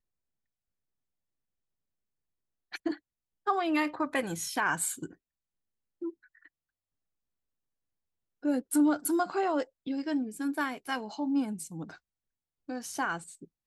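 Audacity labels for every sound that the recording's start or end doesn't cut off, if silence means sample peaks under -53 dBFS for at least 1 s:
2.720000	6.470000	sound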